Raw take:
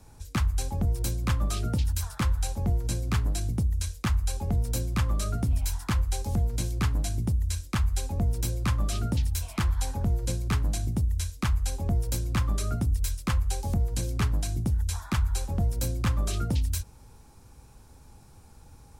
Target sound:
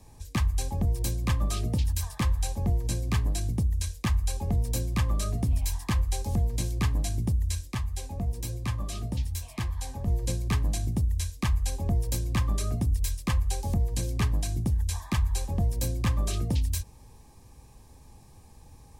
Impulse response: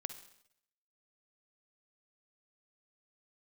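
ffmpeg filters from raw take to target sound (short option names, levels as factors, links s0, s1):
-filter_complex "[0:a]asettb=1/sr,asplit=3[s0][s1][s2];[s0]atrim=end=7.734[s3];[s1]atrim=start=7.73:end=10.08,asetpts=PTS-STARTPTS,afade=t=in:d=0.004:c=qsin,afade=t=out:st=2.346:d=0.004:c=qsin,flanger=delay=7.8:depth=8.2:regen=58:speed=1.1:shape=sinusoidal[s4];[s2]atrim=start=10.076[s5];[s3][s4]acrossfade=d=0.004:c1=hsin:c2=qsin[s6];[s6][s5]acrossfade=d=0.004:c1=qsin:c2=hsin,asuperstop=centerf=1400:order=12:qfactor=5.3"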